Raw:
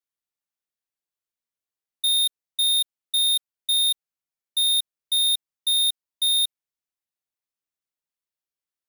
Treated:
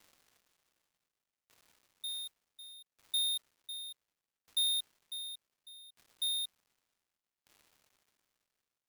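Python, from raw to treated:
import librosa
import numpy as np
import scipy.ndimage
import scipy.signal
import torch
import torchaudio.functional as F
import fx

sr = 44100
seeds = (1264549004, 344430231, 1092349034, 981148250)

y = fx.dmg_crackle(x, sr, seeds[0], per_s=520.0, level_db=-43.0)
y = fx.mod_noise(y, sr, seeds[1], snr_db=24, at=(2.08, 2.74))
y = fx.tremolo_decay(y, sr, direction='decaying', hz=0.67, depth_db=30)
y = y * 10.0 ** (-6.5 / 20.0)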